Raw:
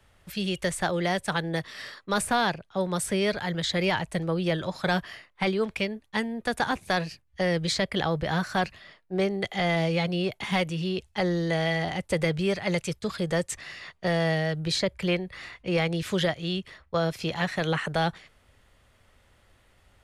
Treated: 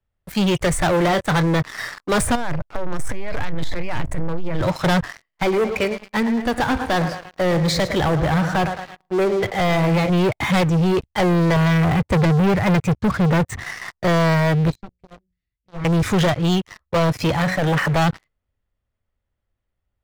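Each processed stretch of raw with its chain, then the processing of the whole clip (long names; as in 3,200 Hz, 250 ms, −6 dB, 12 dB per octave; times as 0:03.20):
0:00.90–0:01.47: high-shelf EQ 8,400 Hz −11.5 dB + double-tracking delay 25 ms −11.5 dB
0:02.35–0:04.61: gain on one half-wave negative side −12 dB + compressor whose output falls as the input rises −31 dBFS, ratio −0.5
0:05.11–0:10.10: tuned comb filter 52 Hz, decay 1.6 s, mix 40% + feedback echo at a low word length 109 ms, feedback 55%, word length 10 bits, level −11.5 dB
0:11.56–0:13.63: high-pass filter 74 Hz + bass and treble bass +6 dB, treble −11 dB
0:14.70–0:15.85: guitar amp tone stack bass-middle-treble 10-0-1 + mains-hum notches 60/120/180/240/300/360/420/480/540 Hz + highs frequency-modulated by the lows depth 0.66 ms
0:17.32–0:17.96: hum removal 185.1 Hz, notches 38 + saturating transformer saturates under 780 Hz
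whole clip: noise reduction from a noise print of the clip's start 10 dB; spectral tilt −2 dB per octave; leveller curve on the samples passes 5; level −3.5 dB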